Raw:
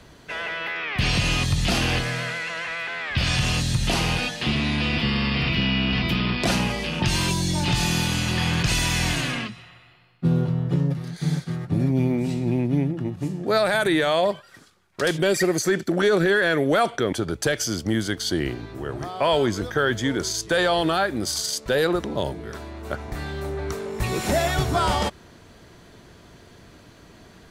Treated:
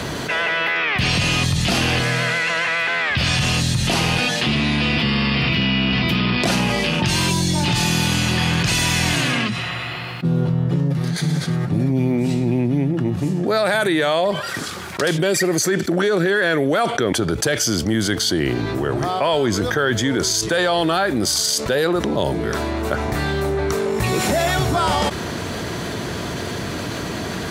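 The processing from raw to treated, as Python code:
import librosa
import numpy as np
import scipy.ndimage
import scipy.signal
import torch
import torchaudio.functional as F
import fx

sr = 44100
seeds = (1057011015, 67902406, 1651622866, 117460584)

y = scipy.signal.sosfilt(scipy.signal.butter(2, 82.0, 'highpass', fs=sr, output='sos'), x)
y = fx.env_flatten(y, sr, amount_pct=70)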